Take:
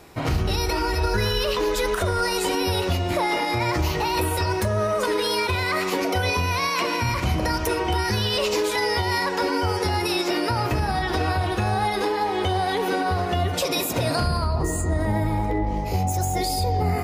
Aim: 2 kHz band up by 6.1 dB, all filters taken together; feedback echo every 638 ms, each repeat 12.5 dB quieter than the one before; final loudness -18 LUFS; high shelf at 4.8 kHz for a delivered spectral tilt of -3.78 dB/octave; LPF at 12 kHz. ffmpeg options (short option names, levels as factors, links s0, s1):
-af "lowpass=12000,equalizer=f=2000:t=o:g=6.5,highshelf=f=4800:g=5.5,aecho=1:1:638|1276|1914:0.237|0.0569|0.0137,volume=1.41"